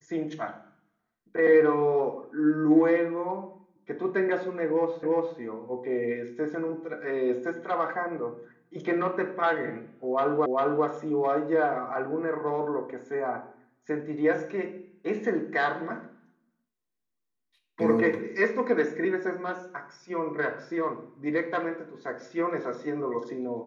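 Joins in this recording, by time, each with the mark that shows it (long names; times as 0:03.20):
0:05.03: the same again, the last 0.35 s
0:10.46: the same again, the last 0.4 s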